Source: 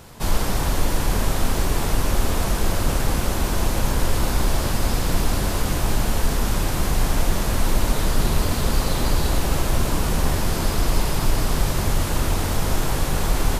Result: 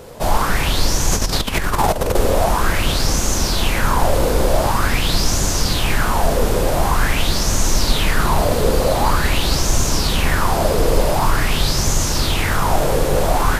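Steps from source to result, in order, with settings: 1.12–2.17 negative-ratio compressor -21 dBFS, ratio -0.5; echo with dull and thin repeats by turns 0.183 s, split 1100 Hz, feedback 71%, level -11.5 dB; LFO bell 0.46 Hz 470–6500 Hz +15 dB; gain +2 dB

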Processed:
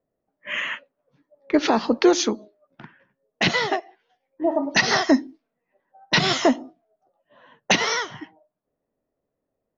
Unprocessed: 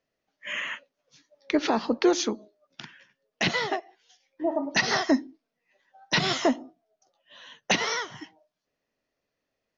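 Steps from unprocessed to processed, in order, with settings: low-pass opened by the level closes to 760 Hz, open at -25 dBFS; gain +5 dB

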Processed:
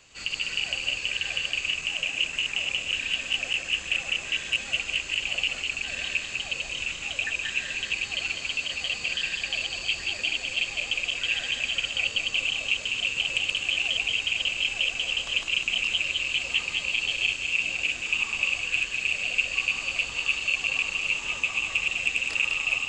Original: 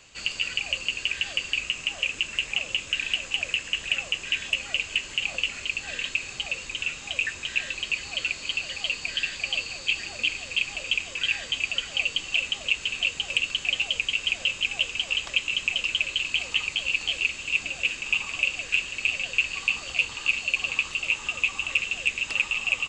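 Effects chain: regenerating reverse delay 0.101 s, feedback 63%, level -1.5 dB; gain -3 dB

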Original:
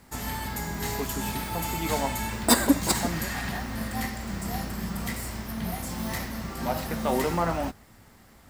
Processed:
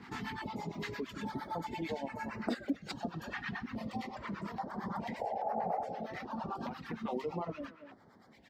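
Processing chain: HPF 180 Hz 12 dB/oct; air absorption 240 m; speakerphone echo 0.23 s, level -9 dB; harmonic tremolo 8.8 Hz, depth 70%, crossover 670 Hz; reverb removal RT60 1.8 s; 5.21–6.07 painted sound noise 400–870 Hz -39 dBFS; 4.08–6.57 bell 850 Hz +14.5 dB 1.1 oct; compressor 3:1, threshold -52 dBFS, peak gain reduction 25 dB; stepped notch 2.4 Hz 590–3400 Hz; gain +12.5 dB

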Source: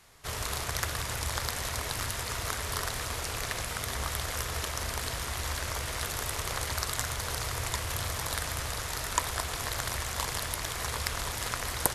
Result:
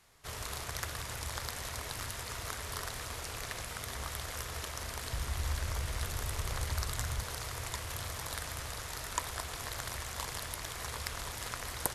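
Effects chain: 5.11–7.23 low shelf 140 Hz +11.5 dB; gain -6.5 dB

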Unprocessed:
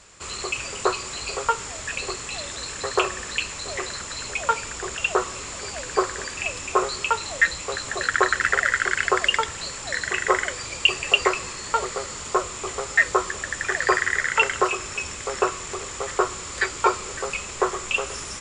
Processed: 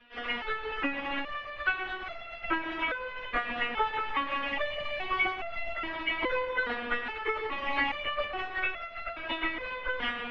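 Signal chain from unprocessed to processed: reverb removal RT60 1.9 s; spectral gate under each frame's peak -20 dB weak; in parallel at -1 dB: compressor 20:1, threshold -45 dBFS, peak gain reduction 18 dB; on the sum: plain phase-vocoder stretch 0.56×; on a send at -7 dB: reverb RT60 1.3 s, pre-delay 97 ms; on the sum: mistuned SSB -280 Hz 230–3000 Hz; maximiser +29.5 dB; stepped resonator 2.4 Hz 240–680 Hz

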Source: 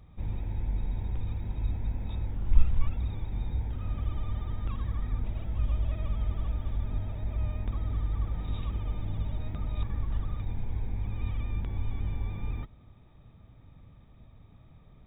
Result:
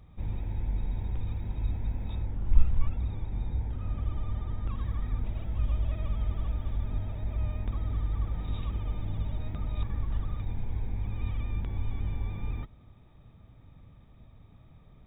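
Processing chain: 2.22–4.77 high shelf 2900 Hz -7 dB

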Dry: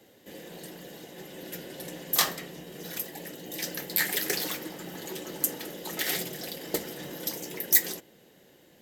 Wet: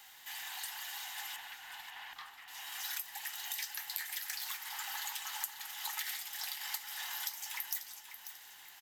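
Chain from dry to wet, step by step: steep high-pass 780 Hz 96 dB/oct; compressor 12:1, threshold -44 dBFS, peak gain reduction 29 dB; companded quantiser 6-bit; 1.36–2.48 air absorption 330 m; on a send: feedback echo 0.541 s, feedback 42%, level -11 dB; on the sum: gain +7 dB

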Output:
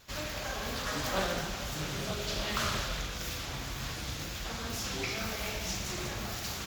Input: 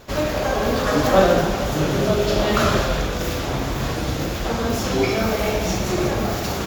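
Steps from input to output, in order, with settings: passive tone stack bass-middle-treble 5-5-5; Doppler distortion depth 0.3 ms

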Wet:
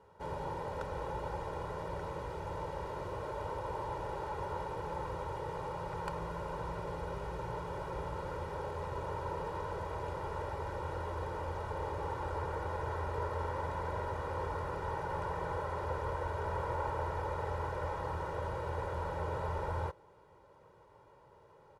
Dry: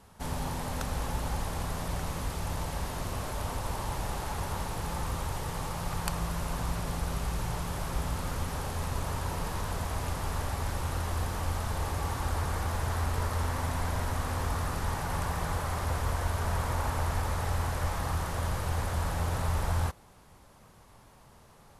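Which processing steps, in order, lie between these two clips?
band-pass 480 Hz, Q 0.64; comb 2.1 ms, depth 76%; gain -1.5 dB

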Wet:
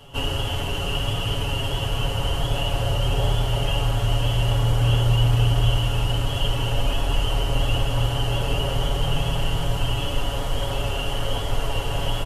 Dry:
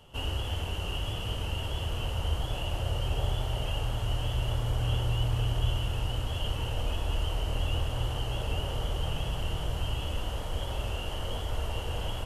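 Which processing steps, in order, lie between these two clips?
comb 7.2 ms, depth 78%; gain +7.5 dB

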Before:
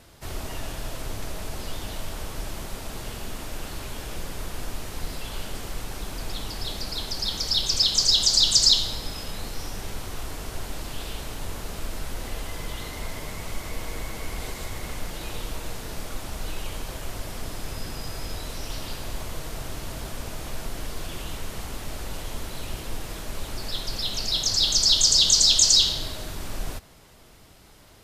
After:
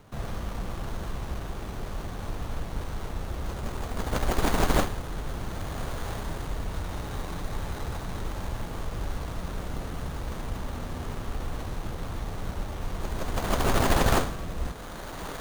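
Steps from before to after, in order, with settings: wide varispeed 1.82×; diffused feedback echo 1.443 s, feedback 66%, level -13.5 dB; running maximum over 17 samples

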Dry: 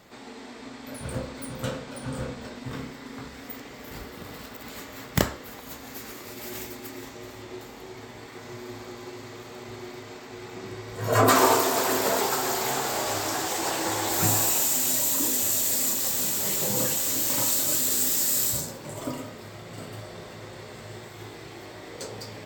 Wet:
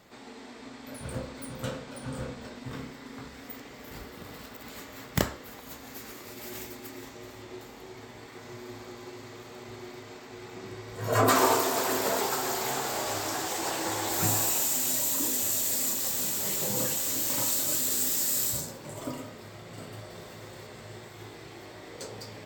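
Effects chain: 20.1–20.67 high shelf 9500 Hz +9 dB; gain -3.5 dB

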